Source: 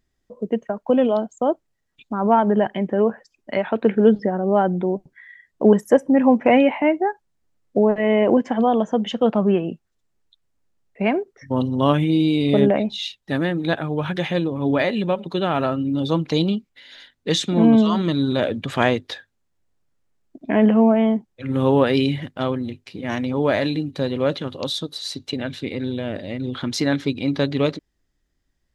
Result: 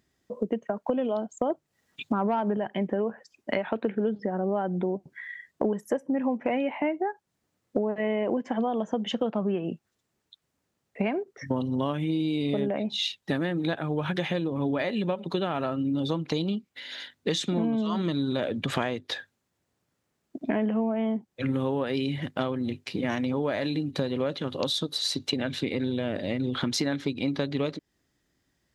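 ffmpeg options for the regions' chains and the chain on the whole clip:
ffmpeg -i in.wav -filter_complex "[0:a]asettb=1/sr,asplit=3[link_01][link_02][link_03];[link_01]atrim=end=1.504[link_04];[link_02]atrim=start=1.5:end=2.57,asetpts=PTS-STARTPTS,afade=type=in:duration=0.004:curve=qsin,afade=type=out:start_time=1.066:duration=0.004:curve=qsin,acontrast=53,bandreject=frequency=50:width_type=h:width=6,bandreject=frequency=100:width_type=h:width=6,bandreject=frequency=150:width_type=h:width=6[link_05];[link_03]atrim=start=2.566[link_06];[link_04][link_05]acrossfade=duration=0.004:curve1=hsin:curve2=qsin[link_07];[link_07][link_06]acrossfade=duration=0.004:curve1=qsin:curve2=hsin,highpass=100,acompressor=threshold=-29dB:ratio=8,volume=4.5dB" out.wav

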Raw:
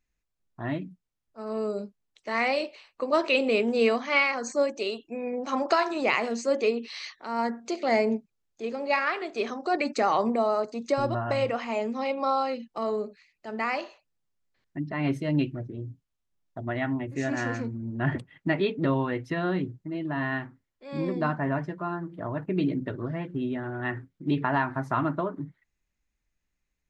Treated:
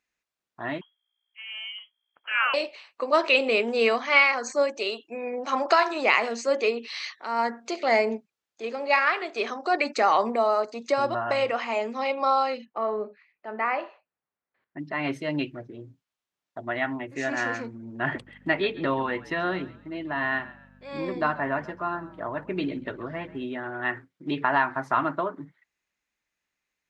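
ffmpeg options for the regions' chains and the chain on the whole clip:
ffmpeg -i in.wav -filter_complex "[0:a]asettb=1/sr,asplit=3[link_01][link_02][link_03];[link_01]atrim=end=0.814[link_04];[link_02]atrim=start=0.81:end=2.54,asetpts=PTS-STARTPTS,afade=type=in:duration=0.004:curve=qsin,afade=type=out:start_time=1.726:duration=0.004:curve=qsin,aeval=exprs='val(0)+0.00282*(sin(2*PI*60*n/s)+sin(2*PI*2*60*n/s)/2+sin(2*PI*3*60*n/s)/3+sin(2*PI*4*60*n/s)/4+sin(2*PI*5*60*n/s)/5)':channel_layout=same,highpass=1000,lowpass=frequency=3000:width_type=q:width=0.5098,lowpass=frequency=3000:width_type=q:width=0.6013,lowpass=frequency=3000:width_type=q:width=0.9,lowpass=frequency=3000:width_type=q:width=2.563,afreqshift=-3500[link_05];[link_03]atrim=start=2.536[link_06];[link_04][link_05]acrossfade=duration=0.004:curve1=hsin:curve2=qsin[link_07];[link_07][link_06]acrossfade=duration=0.004:curve1=qsin:curve2=hsin,asettb=1/sr,asplit=3[link_08][link_09][link_10];[link_08]atrim=end=12.654[link_11];[link_09]atrim=start=12.65:end=14.79,asetpts=PTS-STARTPTS,afade=type=in:duration=0.004:curve=qsin,afade=type=out:start_time=2.136:duration=0.004:curve=qsin,lowpass=1800,asplit=2[link_12][link_13];[link_13]adelay=24,volume=-13dB[link_14];[link_12][link_14]amix=inputs=2:normalize=0,atrim=end_sample=94374[link_15];[link_10]atrim=start=14.786[link_16];[link_11][link_15]acrossfade=duration=0.004:curve1=hsin:curve2=qsin[link_17];[link_17][link_16]acrossfade=duration=0.004:curve1=qsin:curve2=hsin,asettb=1/sr,asplit=3[link_18][link_19][link_20];[link_18]atrim=end=18.134[link_21];[link_19]atrim=start=18.13:end=23.44,asetpts=PTS-STARTPTS,afade=type=in:duration=0.004:curve=qsin,afade=type=out:start_time=5.306:duration=0.004:curve=qsin,asplit=4[link_22][link_23][link_24][link_25];[link_23]adelay=134,afreqshift=-44,volume=-18dB[link_26];[link_24]adelay=268,afreqshift=-88,volume=-27.4dB[link_27];[link_25]adelay=402,afreqshift=-132,volume=-36.7dB[link_28];[link_22][link_26][link_27][link_28]amix=inputs=4:normalize=0,atrim=end_sample=234171,aeval=exprs='val(0)+0.00794*(sin(2*PI*50*n/s)+sin(2*PI*2*50*n/s)/2+sin(2*PI*3*50*n/s)/3+sin(2*PI*4*50*n/s)/4+sin(2*PI*5*50*n/s)/5)':channel_layout=same[link_29];[link_20]atrim=start=23.436[link_30];[link_21][link_29]acrossfade=duration=0.004:curve1=hsin:curve2=qsin[link_31];[link_31][link_30]acrossfade=duration=0.004:curve1=qsin:curve2=hsin,highpass=frequency=820:poles=1,highshelf=frequency=6700:gain=-10.5,volume=6.5dB" out.wav

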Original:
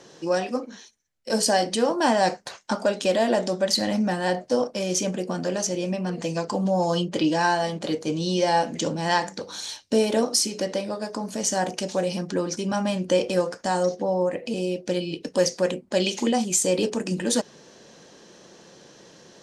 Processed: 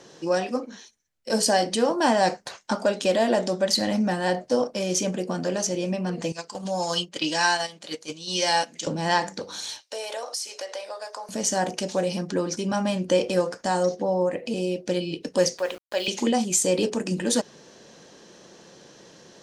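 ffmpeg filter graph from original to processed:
ffmpeg -i in.wav -filter_complex "[0:a]asettb=1/sr,asplit=3[link_01][link_02][link_03];[link_01]atrim=end=6.324[link_04];[link_02]atrim=start=6.32:end=8.87,asetpts=PTS-STARTPTS,afade=type=in:duration=0.004:curve=qsin,afade=type=out:start_time=2.546:duration=0.004:curve=qsin,agate=range=-11dB:threshold=-25dB:ratio=16:release=100:detection=peak,tiltshelf=frequency=1100:gain=-8.5[link_05];[link_03]atrim=start=8.866[link_06];[link_04][link_05]acrossfade=duration=0.004:curve1=hsin:curve2=qsin[link_07];[link_07][link_06]acrossfade=duration=0.004:curve1=qsin:curve2=hsin,asettb=1/sr,asplit=3[link_08][link_09][link_10];[link_08]atrim=end=9.814[link_11];[link_09]atrim=start=9.81:end=11.29,asetpts=PTS-STARTPTS,afade=type=in:duration=0.004:curve=qsin,afade=type=out:start_time=1.476:duration=0.004:curve=qsin,highpass=frequency=580:width=0.5412,highpass=frequency=580:width=1.3066,acompressor=threshold=-30dB:ratio=3:attack=3.2:release=140:knee=1:detection=peak[link_12];[link_10]atrim=start=11.286[link_13];[link_11][link_12]acrossfade=duration=0.004:curve1=hsin:curve2=qsin[link_14];[link_14][link_13]acrossfade=duration=0.004:curve1=qsin:curve2=hsin,asettb=1/sr,asplit=3[link_15][link_16][link_17];[link_15]atrim=end=15.584[link_18];[link_16]atrim=start=15.58:end=16.08,asetpts=PTS-STARTPTS,afade=type=in:duration=0.004:curve=qsin,afade=type=out:start_time=0.496:duration=0.004:curve=qsin,highpass=580,lowpass=4500,aeval=exprs='val(0)*gte(abs(val(0)),0.01)':channel_layout=same[link_19];[link_17]atrim=start=16.076[link_20];[link_18][link_19]acrossfade=duration=0.004:curve1=hsin:curve2=qsin[link_21];[link_21][link_20]acrossfade=duration=0.004:curve1=qsin:curve2=hsin" out.wav

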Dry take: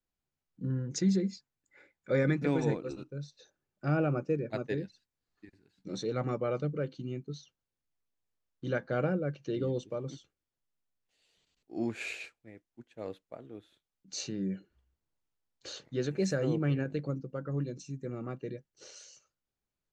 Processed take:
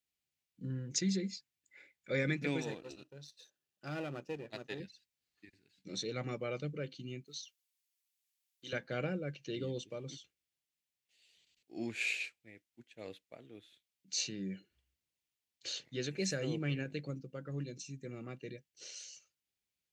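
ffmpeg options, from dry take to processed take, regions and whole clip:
ffmpeg -i in.wav -filter_complex "[0:a]asettb=1/sr,asplit=3[link_01][link_02][link_03];[link_01]atrim=end=2.624[link_04];[link_02]atrim=start=2.62:end=4.8,asetpts=PTS-STARTPTS,afade=type=in:duration=0.004:curve=qsin,afade=type=out:start_time=2.176:duration=0.004:curve=qsin,aeval=exprs='if(lt(val(0),0),0.447*val(0),val(0))':channel_layout=same,lowshelf=frequency=180:gain=-8,bandreject=frequency=2200:width=5[link_05];[link_03]atrim=start=4.796[link_06];[link_04][link_05]acrossfade=duration=0.004:curve1=hsin:curve2=qsin[link_07];[link_07][link_06]acrossfade=duration=0.004:curve1=qsin:curve2=hsin,asettb=1/sr,asplit=3[link_08][link_09][link_10];[link_08]atrim=end=7.254[link_11];[link_09]atrim=start=7.25:end=8.73,asetpts=PTS-STARTPTS,afade=type=in:duration=0.004:curve=qsin,afade=type=out:start_time=1.476:duration=0.004:curve=qsin,highpass=frequency=820:poles=1,aemphasis=mode=production:type=cd[link_12];[link_10]atrim=start=8.726[link_13];[link_11][link_12]acrossfade=duration=0.004:curve1=hsin:curve2=qsin[link_14];[link_14][link_13]acrossfade=duration=0.004:curve1=qsin:curve2=hsin,highpass=56,highshelf=frequency=1700:width_type=q:width=1.5:gain=9,volume=-6.5dB" out.wav

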